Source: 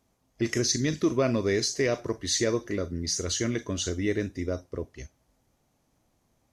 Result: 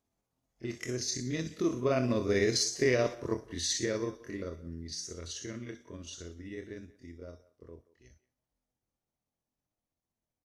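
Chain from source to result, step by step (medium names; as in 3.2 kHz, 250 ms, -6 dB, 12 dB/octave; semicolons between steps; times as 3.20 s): Doppler pass-by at 1.69 s, 8 m/s, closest 3.7 m; granular stretch 1.6×, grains 128 ms; speakerphone echo 180 ms, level -19 dB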